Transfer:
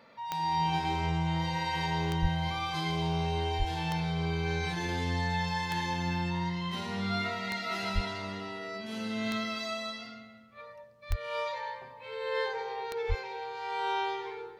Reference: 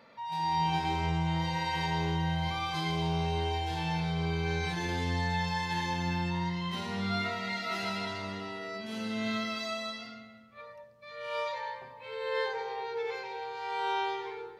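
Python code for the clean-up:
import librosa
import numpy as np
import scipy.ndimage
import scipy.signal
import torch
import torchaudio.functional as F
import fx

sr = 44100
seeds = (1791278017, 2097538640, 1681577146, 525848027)

y = fx.fix_declick_ar(x, sr, threshold=10.0)
y = fx.fix_deplosive(y, sr, at_s=(2.21, 3.58, 7.94, 11.09, 13.08))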